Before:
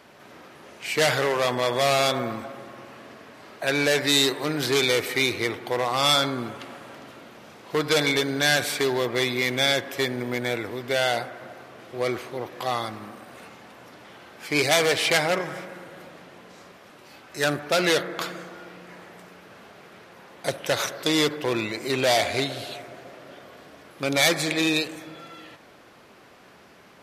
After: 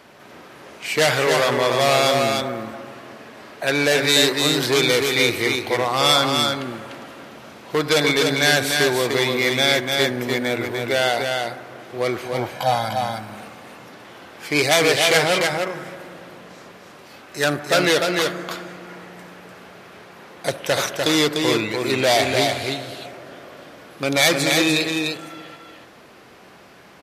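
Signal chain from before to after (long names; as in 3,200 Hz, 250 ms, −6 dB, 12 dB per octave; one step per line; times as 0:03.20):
0:12.25–0:13.18: comb filter 1.3 ms, depth 97%
single-tap delay 297 ms −4 dB
level +3.5 dB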